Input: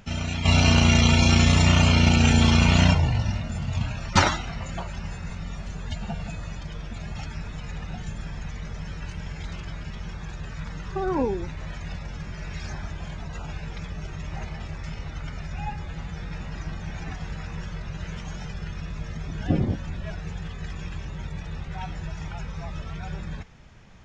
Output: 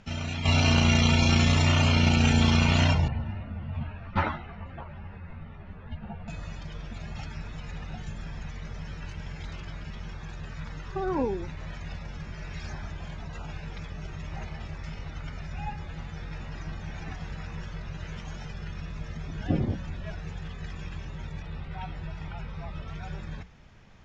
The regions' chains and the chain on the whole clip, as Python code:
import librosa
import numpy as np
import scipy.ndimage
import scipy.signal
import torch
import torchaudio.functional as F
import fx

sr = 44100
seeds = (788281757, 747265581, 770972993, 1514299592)

y = fx.chain(x, sr, fx.bessel_lowpass(hz=1900.0, order=4),
    fx.ensemble(), at=(3.08, 6.28))
y = fx.chain(y, sr, fx.peak_eq(hz=6400.0, db=-11.0, octaves=0.51),
    fx.notch(hz=1700.0, q=21.0), at=(21.42, 22.88))
y = scipy.signal.sosfilt(scipy.signal.butter(2, 6500.0, 'lowpass', fs=sr, output='sos'), y)
y = fx.hum_notches(y, sr, base_hz=60, count=3)
y = y * librosa.db_to_amplitude(-3.0)